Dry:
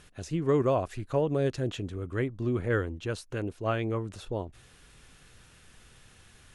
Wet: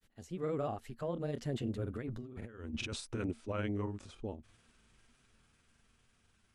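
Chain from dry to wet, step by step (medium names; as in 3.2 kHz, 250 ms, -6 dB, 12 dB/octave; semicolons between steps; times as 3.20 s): Doppler pass-by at 2.47 s, 31 m/s, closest 6.4 m; peaking EQ 230 Hz +10.5 dB 0.21 oct; compressor with a negative ratio -43 dBFS, ratio -1; granulator, spray 26 ms, pitch spread up and down by 0 st; trim +4.5 dB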